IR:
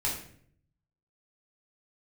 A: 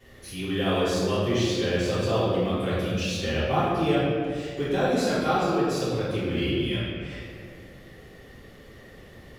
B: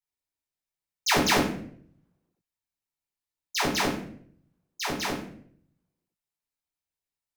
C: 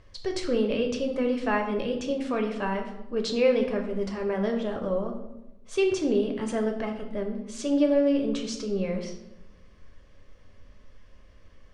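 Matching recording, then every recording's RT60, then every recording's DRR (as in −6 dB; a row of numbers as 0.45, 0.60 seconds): B; 2.3, 0.60, 0.95 seconds; −13.0, −4.5, 3.0 decibels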